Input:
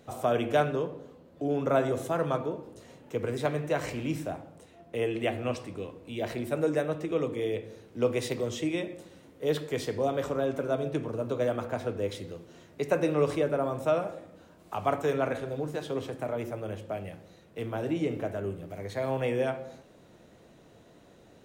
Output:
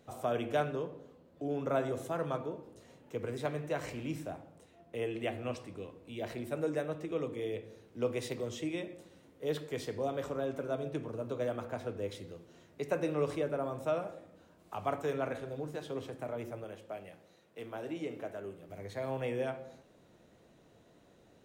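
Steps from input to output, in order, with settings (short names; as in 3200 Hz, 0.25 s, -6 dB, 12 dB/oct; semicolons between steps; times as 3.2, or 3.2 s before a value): 16.64–18.69 HPF 330 Hz 6 dB/oct; gain -6.5 dB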